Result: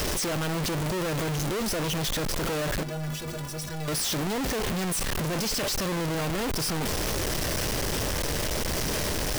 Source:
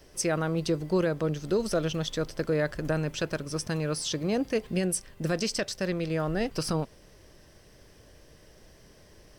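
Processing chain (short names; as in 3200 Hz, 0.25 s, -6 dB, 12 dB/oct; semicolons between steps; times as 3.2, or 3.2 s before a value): infinite clipping; 2.83–3.88 metallic resonator 72 Hz, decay 0.26 s, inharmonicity 0.03; gain +2.5 dB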